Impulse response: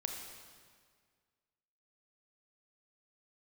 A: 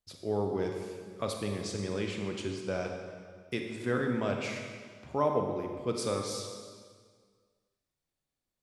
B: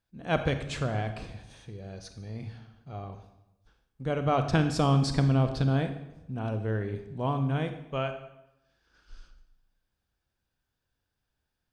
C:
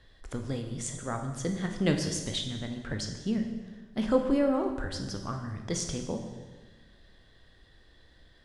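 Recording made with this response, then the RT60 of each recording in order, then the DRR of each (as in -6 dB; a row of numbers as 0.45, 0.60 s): A; 1.8, 0.90, 1.3 s; 2.5, 7.5, 4.0 dB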